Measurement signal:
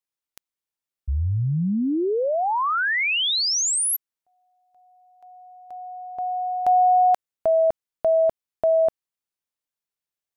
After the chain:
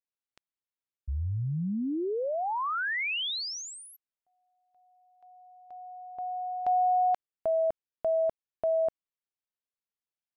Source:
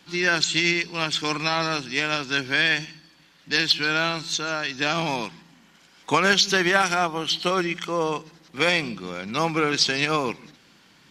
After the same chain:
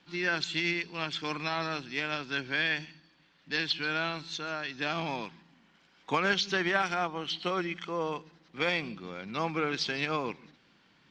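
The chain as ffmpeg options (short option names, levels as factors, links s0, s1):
-af "lowpass=4100,volume=0.398"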